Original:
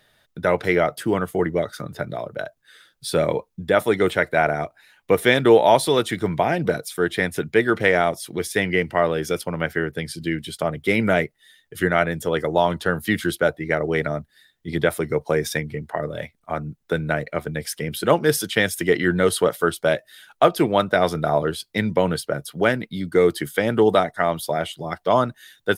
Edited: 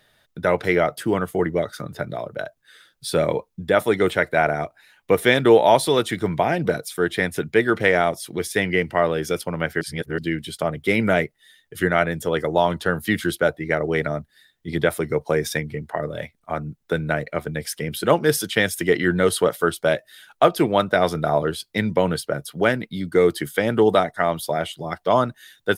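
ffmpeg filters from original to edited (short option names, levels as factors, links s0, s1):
-filter_complex "[0:a]asplit=3[s0][s1][s2];[s0]atrim=end=9.812[s3];[s1]atrim=start=9.808:end=10.182,asetpts=PTS-STARTPTS,areverse[s4];[s2]atrim=start=10.178[s5];[s3][s4]acrossfade=d=0.004:c1=hsin:c2=hsin[s6];[s6][s5]acrossfade=d=0.004:c1=hsin:c2=hsin"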